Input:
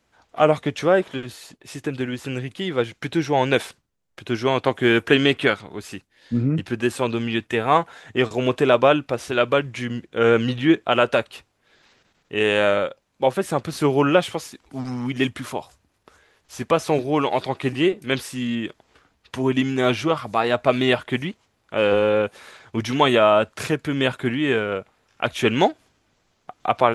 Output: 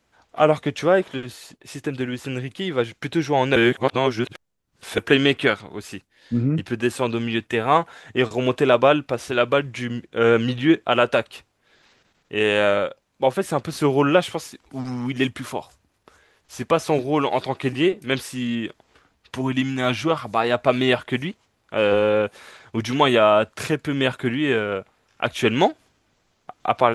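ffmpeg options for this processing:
-filter_complex "[0:a]asettb=1/sr,asplit=3[s0][s1][s2];[s0]atrim=end=19.414[s3];[s1]atrim=start=19.41:end=20.05,asetpts=PTS-STARTPTS,afade=t=in:d=0.004:c=qsin,afade=t=out:st=0.636:d=0.004:c=qsin,equalizer=f=420:t=o:w=0.44:g=-13[s4];[s2]atrim=start=20.046[s5];[s3][s4]acrossfade=d=0.004:c1=hsin:c2=qsin[s6];[s6][s5]acrossfade=d=0.004:c1=qsin:c2=hsin,asplit=3[s7][s8][s9];[s7]atrim=end=3.562[s10];[s8]atrim=start=3.558:end=4.982,asetpts=PTS-STARTPTS,areverse[s11];[s9]atrim=start=4.978[s12];[s10][s11]acrossfade=d=0.004:c1=hsin:c2=hsin[s13];[s13][s12]acrossfade=d=0.004:c1=hsin:c2=hsin"

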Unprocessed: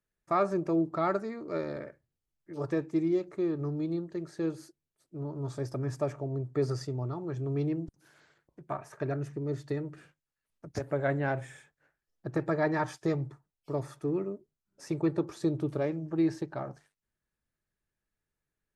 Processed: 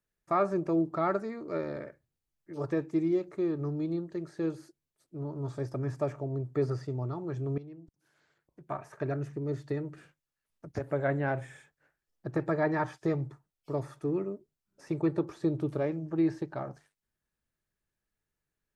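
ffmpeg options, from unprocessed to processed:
-filter_complex "[0:a]asplit=2[s0][s1];[s0]atrim=end=7.58,asetpts=PTS-STARTPTS,afade=t=out:st=7.576:d=0.004:c=hsin:silence=0.149624[s2];[s1]atrim=start=7.58,asetpts=PTS-STARTPTS,afade=t=in:d=1.21:c=qua:silence=0.149624[s3];[s2][s3]concat=n=2:v=0:a=1,acrossover=split=2900[s4][s5];[s5]acompressor=threshold=0.00126:ratio=4:attack=1:release=60[s6];[s4][s6]amix=inputs=2:normalize=0"

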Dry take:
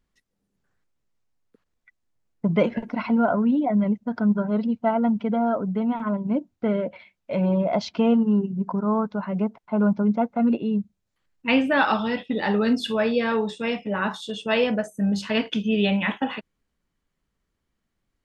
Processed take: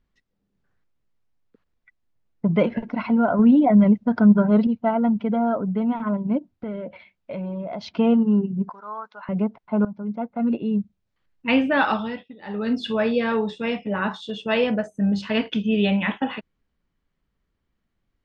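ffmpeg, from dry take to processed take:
-filter_complex "[0:a]asettb=1/sr,asplit=3[s0][s1][s2];[s0]atrim=end=3.394[s3];[s1]atrim=start=3.39:end=4.67,asetpts=PTS-STARTPTS,afade=t=in:d=0.004:c=qsin,afade=t=out:st=1.276:d=0.004:c=qsin,acontrast=33[s4];[s2]atrim=start=4.666[s5];[s3][s4]acrossfade=d=0.004:c1=hsin:c2=qsin[s6];[s6][s5]acrossfade=d=0.004:c1=qsin:c2=hsin,asplit=3[s7][s8][s9];[s7]afade=t=out:st=6.37:d=0.02[s10];[s8]acompressor=threshold=0.0355:ratio=5:attack=3.2:release=140:knee=1:detection=peak,afade=t=in:st=6.37:d=0.02,afade=t=out:st=7.89:d=0.02[s11];[s9]afade=t=in:st=7.89:d=0.02[s12];[s10][s11][s12]amix=inputs=3:normalize=0,asettb=1/sr,asplit=3[s13][s14][s15];[s13]atrim=end=8.694[s16];[s14]atrim=start=8.69:end=9.29,asetpts=PTS-STARTPTS,afade=t=in:d=0.004:c=qsin,afade=t=out:st=0.596:d=0.004:c=qsin,highpass=1200[s17];[s15]atrim=start=9.286[s18];[s16][s17]acrossfade=d=0.004:c1=hsin:c2=qsin[s19];[s19][s18]acrossfade=d=0.004:c1=qsin:c2=hsin,asplit=4[s20][s21][s22][s23];[s20]atrim=end=9.85,asetpts=PTS-STARTPTS,afade=t=out:st=9.846:d=0.004:c=hsin:silence=0.125893[s24];[s21]atrim=start=9.85:end=12.36,asetpts=PTS-STARTPTS,afade=t=in:d=0.93:silence=0.125893,afade=t=out:st=2.01:d=0.5:silence=0.0668344[s25];[s22]atrim=start=12.36:end=12.38,asetpts=PTS-STARTPTS,volume=0.0668[s26];[s23]atrim=start=12.38,asetpts=PTS-STARTPTS,afade=t=in:d=0.5:silence=0.0668344[s27];[s24][s25][s26][s27]concat=n=4:v=0:a=1,lowpass=4500,lowshelf=f=190:g=3.5"

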